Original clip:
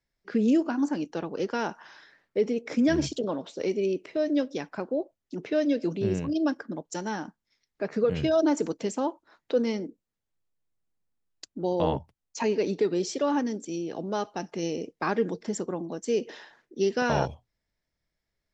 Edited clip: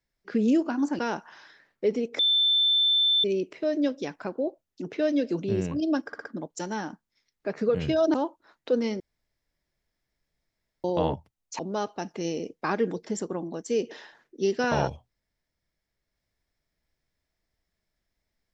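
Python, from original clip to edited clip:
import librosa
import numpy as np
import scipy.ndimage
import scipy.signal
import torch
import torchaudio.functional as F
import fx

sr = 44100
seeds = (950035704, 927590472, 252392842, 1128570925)

y = fx.edit(x, sr, fx.cut(start_s=0.99, length_s=0.53),
    fx.bleep(start_s=2.72, length_s=1.05, hz=3540.0, db=-19.0),
    fx.stutter(start_s=6.6, slice_s=0.06, count=4),
    fx.cut(start_s=8.49, length_s=0.48),
    fx.room_tone_fill(start_s=9.83, length_s=1.84),
    fx.cut(start_s=12.42, length_s=1.55), tone=tone)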